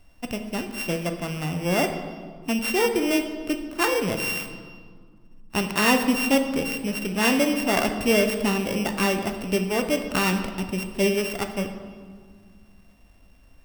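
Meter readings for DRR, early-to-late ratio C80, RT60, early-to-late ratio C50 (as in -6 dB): 5.5 dB, 9.0 dB, 1.8 s, 8.0 dB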